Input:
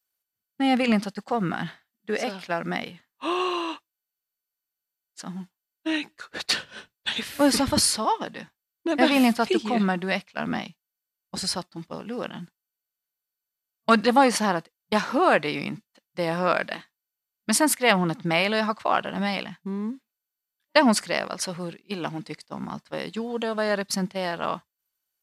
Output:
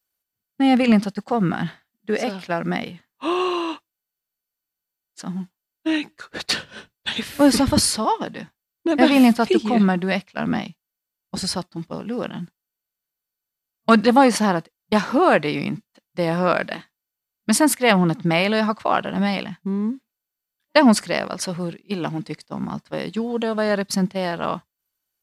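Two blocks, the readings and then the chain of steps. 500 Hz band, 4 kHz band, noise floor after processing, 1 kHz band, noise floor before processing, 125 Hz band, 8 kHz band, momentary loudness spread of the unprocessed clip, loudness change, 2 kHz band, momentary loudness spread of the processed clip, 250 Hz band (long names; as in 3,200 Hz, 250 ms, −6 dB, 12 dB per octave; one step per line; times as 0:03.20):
+4.0 dB, +1.5 dB, −85 dBFS, +3.0 dB, below −85 dBFS, +7.0 dB, +1.5 dB, 17 LU, +4.0 dB, +2.0 dB, 17 LU, +6.5 dB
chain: low-shelf EQ 440 Hz +6.5 dB
level +1.5 dB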